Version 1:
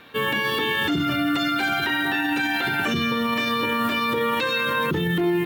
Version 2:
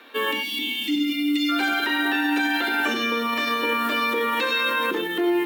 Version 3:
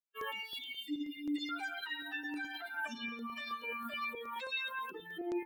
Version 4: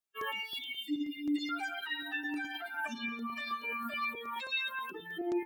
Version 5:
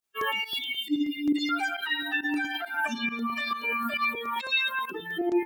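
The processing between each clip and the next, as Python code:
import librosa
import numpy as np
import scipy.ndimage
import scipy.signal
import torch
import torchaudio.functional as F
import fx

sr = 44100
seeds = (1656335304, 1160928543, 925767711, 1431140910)

y1 = scipy.signal.sosfilt(scipy.signal.butter(8, 240.0, 'highpass', fs=sr, output='sos'), x)
y1 = fx.spec_box(y1, sr, start_s=0.32, length_s=1.17, low_hz=330.0, high_hz=1900.0, gain_db=-25)
y1 = fx.rev_gated(y1, sr, seeds[0], gate_ms=130, shape='rising', drr_db=8.5)
y2 = fx.bin_expand(y1, sr, power=3.0)
y2 = fx.comb_fb(y2, sr, f0_hz=440.0, decay_s=0.72, harmonics='all', damping=0.0, mix_pct=60)
y2 = fx.filter_lfo_notch(y2, sr, shape='square', hz=4.7, low_hz=410.0, high_hz=6200.0, q=1.8)
y2 = y2 * 10.0 ** (-3.0 / 20.0)
y3 = fx.notch_comb(y2, sr, f0_hz=500.0)
y3 = y3 * 10.0 ** (4.0 / 20.0)
y4 = fx.volume_shaper(y3, sr, bpm=136, per_beat=1, depth_db=-15, release_ms=72.0, shape='fast start')
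y4 = y4 * 10.0 ** (8.5 / 20.0)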